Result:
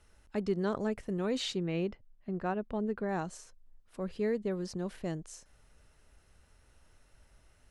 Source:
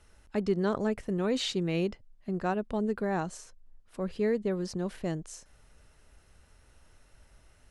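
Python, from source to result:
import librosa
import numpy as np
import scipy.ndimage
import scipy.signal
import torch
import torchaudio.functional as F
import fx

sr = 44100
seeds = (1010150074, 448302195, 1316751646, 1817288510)

y = fx.bass_treble(x, sr, bass_db=0, treble_db=-11, at=(1.56, 3.09))
y = F.gain(torch.from_numpy(y), -3.5).numpy()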